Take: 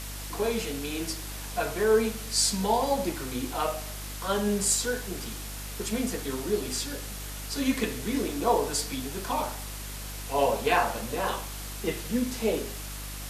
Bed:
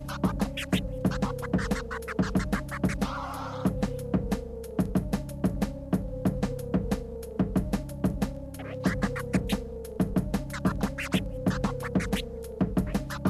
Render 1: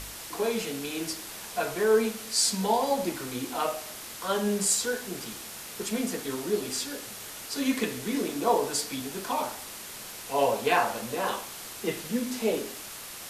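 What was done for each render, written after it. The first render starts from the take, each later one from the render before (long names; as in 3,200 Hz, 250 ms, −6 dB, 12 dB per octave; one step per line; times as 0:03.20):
hum removal 50 Hz, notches 6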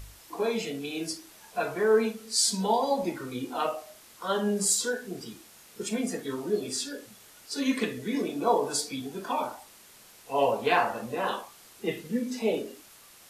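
noise reduction from a noise print 12 dB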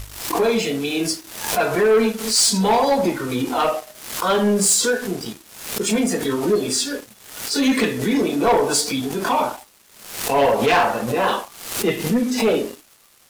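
leveller curve on the samples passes 3
background raised ahead of every attack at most 78 dB per second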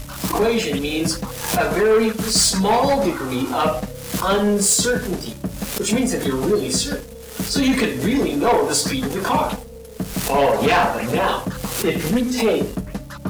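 mix in bed 0 dB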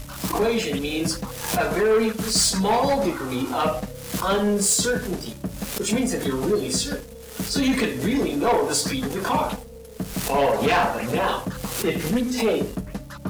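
level −3.5 dB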